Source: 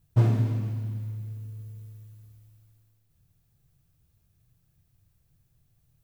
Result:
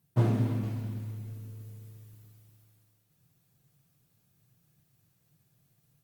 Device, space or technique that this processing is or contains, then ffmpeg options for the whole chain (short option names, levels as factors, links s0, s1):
video call: -af "highpass=f=130:w=0.5412,highpass=f=130:w=1.3066,dynaudnorm=f=250:g=3:m=1.41" -ar 48000 -c:a libopus -b:a 32k